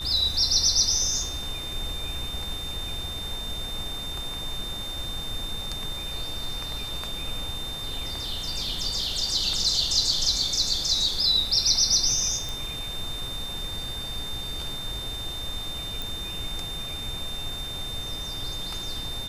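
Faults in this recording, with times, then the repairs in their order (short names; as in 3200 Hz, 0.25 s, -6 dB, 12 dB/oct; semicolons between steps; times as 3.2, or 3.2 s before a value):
tone 3600 Hz -33 dBFS
12.49 pop
16.02 pop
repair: de-click; notch 3600 Hz, Q 30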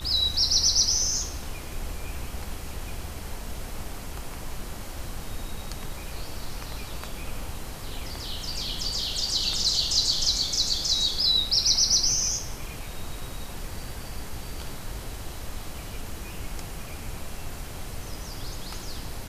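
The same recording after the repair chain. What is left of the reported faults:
none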